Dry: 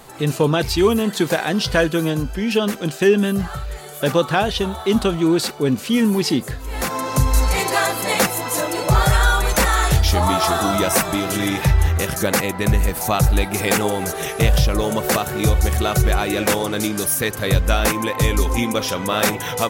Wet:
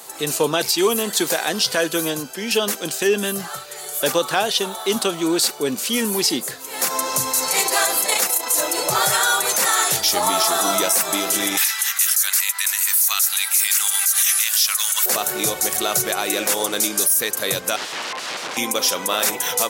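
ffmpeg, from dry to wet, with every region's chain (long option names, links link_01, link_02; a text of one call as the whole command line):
ffmpeg -i in.wav -filter_complex "[0:a]asettb=1/sr,asplit=3[link_01][link_02][link_03];[link_01]atrim=end=8.064[link_04];[link_02]atrim=start=8.06:end=8.55,asetpts=PTS-STARTPTS,afade=type=in:duration=0.004:curve=qsin,afade=type=out:start_time=0.486:duration=0.004:curve=qsin,highpass=220,tremolo=f=29:d=0.462[link_05];[link_03]atrim=start=8.546[link_06];[link_04][link_05]acrossfade=duration=0.004:curve1=hsin:curve2=qsin[link_07];[link_07][link_06]acrossfade=duration=0.004:curve1=qsin:curve2=hsin,asettb=1/sr,asplit=3[link_08][link_09][link_10];[link_08]atrim=end=11.574[link_11];[link_09]atrim=start=11.57:end=15.06,asetpts=PTS-STARTPTS,afade=type=in:duration=0.004:curve=qsin,afade=type=out:start_time=3.486:duration=0.004:curve=qsin,highpass=frequency=1300:width=0.5412,highpass=frequency=1300:width=1.3066,acontrast=23,highshelf=frequency=4600:gain=8[link_12];[link_10]atrim=start=15.056[link_13];[link_11][link_12]acrossfade=duration=0.004:curve1=hsin:curve2=qsin[link_14];[link_14][link_13]acrossfade=duration=0.004:curve1=qsin:curve2=hsin,asettb=1/sr,asplit=3[link_15][link_16][link_17];[link_15]atrim=end=17.764[link_18];[link_16]atrim=start=17.76:end=18.57,asetpts=PTS-STARTPTS,afade=type=in:duration=0.004:curve=qsin,afade=type=out:start_time=0.806:duration=0.004:curve=qsin,bandreject=frequency=50:width_type=h:width=6,bandreject=frequency=100:width_type=h:width=6,bandreject=frequency=150:width_type=h:width=6,bandreject=frequency=200:width_type=h:width=6,bandreject=frequency=250:width_type=h:width=6,bandreject=frequency=300:width_type=h:width=6,aeval=exprs='(mod(11.9*val(0)+1,2)-1)/11.9':channel_layout=same,lowpass=3400[link_19];[link_17]atrim=start=18.566[link_20];[link_18][link_19]acrossfade=duration=0.004:curve1=hsin:curve2=qsin[link_21];[link_21][link_20]acrossfade=duration=0.004:curve1=qsin:curve2=hsin,highpass=frequency=130:width=0.5412,highpass=frequency=130:width=1.3066,bass=frequency=250:gain=-14,treble=frequency=4000:gain=11,alimiter=limit=-7dB:level=0:latency=1:release=73" out.wav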